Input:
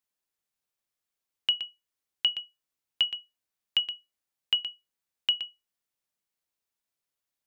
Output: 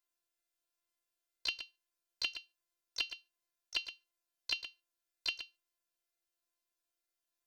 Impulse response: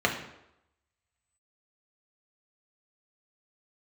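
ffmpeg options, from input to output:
-filter_complex "[0:a]asplit=2[link_01][link_02];[1:a]atrim=start_sample=2205,atrim=end_sample=6615[link_03];[link_02][link_03]afir=irnorm=-1:irlink=0,volume=-33.5dB[link_04];[link_01][link_04]amix=inputs=2:normalize=0,afftfilt=real='hypot(re,im)*cos(PI*b)':imag='0':win_size=512:overlap=0.75,asplit=4[link_05][link_06][link_07][link_08];[link_06]asetrate=58866,aresample=44100,atempo=0.749154,volume=-17dB[link_09];[link_07]asetrate=66075,aresample=44100,atempo=0.66742,volume=-4dB[link_10];[link_08]asetrate=88200,aresample=44100,atempo=0.5,volume=-16dB[link_11];[link_05][link_09][link_10][link_11]amix=inputs=4:normalize=0"

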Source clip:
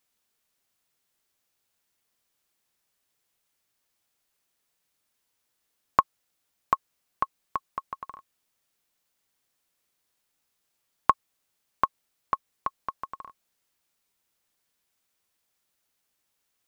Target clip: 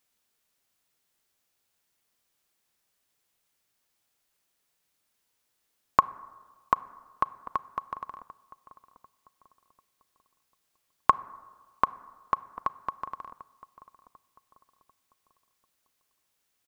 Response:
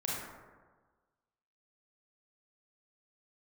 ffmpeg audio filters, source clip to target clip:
-filter_complex "[0:a]asplit=2[link_01][link_02];[link_02]adelay=744,lowpass=frequency=1300:poles=1,volume=-16dB,asplit=2[link_03][link_04];[link_04]adelay=744,lowpass=frequency=1300:poles=1,volume=0.44,asplit=2[link_05][link_06];[link_06]adelay=744,lowpass=frequency=1300:poles=1,volume=0.44,asplit=2[link_07][link_08];[link_08]adelay=744,lowpass=frequency=1300:poles=1,volume=0.44[link_09];[link_01][link_03][link_05][link_07][link_09]amix=inputs=5:normalize=0,asplit=2[link_10][link_11];[1:a]atrim=start_sample=2205[link_12];[link_11][link_12]afir=irnorm=-1:irlink=0,volume=-22dB[link_13];[link_10][link_13]amix=inputs=2:normalize=0"

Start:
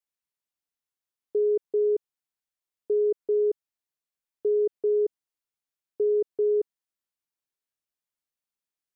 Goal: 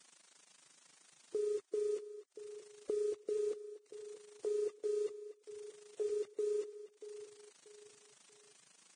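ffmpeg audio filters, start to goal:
ffmpeg -i in.wav -filter_complex "[0:a]aeval=exprs='val(0)+0.5*0.0112*sgn(val(0))':channel_layout=same,asplit=3[link_01][link_02][link_03];[link_01]afade=type=out:start_time=3.35:duration=0.02[link_04];[link_02]highpass=frequency=290:width=0.5412,highpass=frequency=290:width=1.3066,afade=type=in:start_time=3.35:duration=0.02,afade=type=out:start_time=6.08:duration=0.02[link_05];[link_03]afade=type=in:start_time=6.08:duration=0.02[link_06];[link_04][link_05][link_06]amix=inputs=3:normalize=0,afftdn=noise_reduction=30:noise_floor=-36,aemphasis=mode=production:type=cd,bandreject=frequency=400:width=12,alimiter=level_in=3dB:limit=-24dB:level=0:latency=1:release=192,volume=-3dB,acompressor=threshold=-58dB:ratio=2,tremolo=f=26:d=0.519,acrusher=bits=10:mix=0:aa=0.000001,aecho=1:1:635|1270|1905:0.211|0.0697|0.023,volume=12dB" -ar 22050 -c:a libvorbis -b:a 16k out.ogg

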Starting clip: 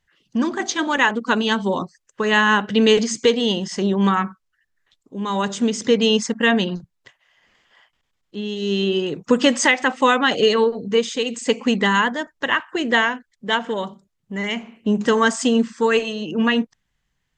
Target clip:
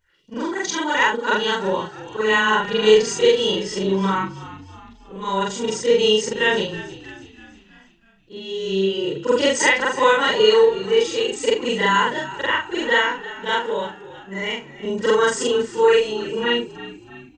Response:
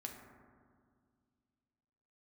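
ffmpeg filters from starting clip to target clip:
-filter_complex "[0:a]afftfilt=real='re':imag='-im':win_size=4096:overlap=0.75,aecho=1:1:2.1:0.63,asplit=6[link_01][link_02][link_03][link_04][link_05][link_06];[link_02]adelay=323,afreqshift=-50,volume=-16dB[link_07];[link_03]adelay=646,afreqshift=-100,volume=-21.7dB[link_08];[link_04]adelay=969,afreqshift=-150,volume=-27.4dB[link_09];[link_05]adelay=1292,afreqshift=-200,volume=-33dB[link_10];[link_06]adelay=1615,afreqshift=-250,volume=-38.7dB[link_11];[link_01][link_07][link_08][link_09][link_10][link_11]amix=inputs=6:normalize=0,volume=2.5dB"

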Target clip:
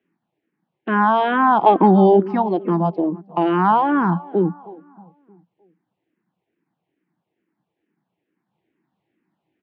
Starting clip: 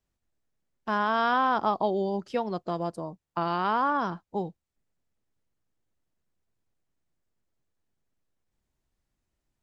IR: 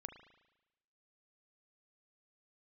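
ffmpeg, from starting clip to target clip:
-filter_complex "[0:a]asplit=2[link_01][link_02];[link_02]alimiter=level_in=1.5dB:limit=-24dB:level=0:latency=1,volume=-1.5dB,volume=-2dB[link_03];[link_01][link_03]amix=inputs=2:normalize=0,asettb=1/sr,asplit=3[link_04][link_05][link_06];[link_04]atrim=end=1.664[link_07];[link_05]atrim=start=1.66:end=2.2,asetpts=PTS-STARTPTS,afade=type=in:duration=0.004:curve=qsin,afade=type=out:start_time=0.536:duration=0.004:curve=qsin,acontrast=63[link_08];[link_06]atrim=start=2.196[link_09];[link_07][link_08]acrossfade=duration=0.004:curve1=hsin:curve2=qsin[link_10];[link_10][link_09]acrossfade=duration=0.004:curve1=qsin:curve2=hsin,highpass=frequency=150:width=0.5412,highpass=frequency=150:width=1.3066,equalizer=frequency=180:width_type=q:width=4:gain=6,equalizer=frequency=320:width_type=q:width=4:gain=9,equalizer=frequency=580:width_type=q:width=4:gain=-5,equalizer=frequency=830:width_type=q:width=4:gain=4,equalizer=frequency=1300:width_type=q:width=4:gain=-5,lowpass=frequency=2800:width=0.5412,lowpass=frequency=2800:width=1.3066,asplit=2[link_11][link_12];[link_12]adelay=312,lowpass=frequency=1800:poles=1,volume=-19dB,asplit=2[link_13][link_14];[link_14]adelay=312,lowpass=frequency=1800:poles=1,volume=0.46,asplit=2[link_15][link_16];[link_16]adelay=312,lowpass=frequency=1800:poles=1,volume=0.46,asplit=2[link_17][link_18];[link_18]adelay=312,lowpass=frequency=1800:poles=1,volume=0.46[link_19];[link_11][link_13][link_15][link_17][link_19]amix=inputs=5:normalize=0,asplit=2[link_20][link_21];[link_21]afreqshift=-2.3[link_22];[link_20][link_22]amix=inputs=2:normalize=1,volume=9dB"

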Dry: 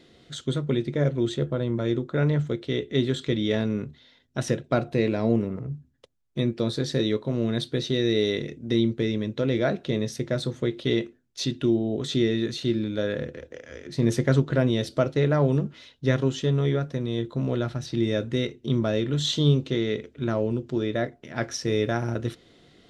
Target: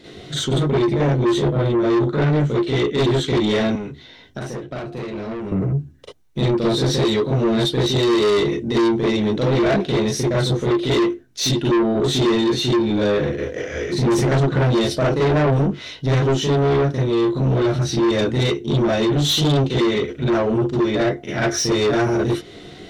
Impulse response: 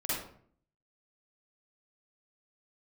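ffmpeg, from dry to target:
-filter_complex "[1:a]atrim=start_sample=2205,atrim=end_sample=3969,asetrate=52920,aresample=44100[link_01];[0:a][link_01]afir=irnorm=-1:irlink=0,asplit=2[link_02][link_03];[link_03]acompressor=threshold=-32dB:ratio=6,volume=0.5dB[link_04];[link_02][link_04]amix=inputs=2:normalize=0,asoftclip=type=tanh:threshold=-21dB,asettb=1/sr,asplit=3[link_05][link_06][link_07];[link_05]atrim=end=3.754[link_08];[link_06]atrim=start=3.75:end=5.52,asetpts=PTS-STARTPTS,afade=type=in:duration=0.004:curve=qsin,afade=type=out:start_time=1.766:duration=0.004:curve=qsin,acrossover=split=220|1800[link_09][link_10][link_11];[link_09]acompressor=threshold=-42dB:ratio=4[link_12];[link_10]acompressor=threshold=-38dB:ratio=4[link_13];[link_11]acompressor=threshold=-51dB:ratio=4[link_14];[link_12][link_13][link_14]amix=inputs=3:normalize=0[link_15];[link_07]atrim=start=5.516[link_16];[link_08][link_15]acrossfade=duration=0.004:curve1=hsin:curve2=qsin[link_17];[link_17][link_16]acrossfade=duration=0.004:curve1=qsin:curve2=hsin,volume=7dB"

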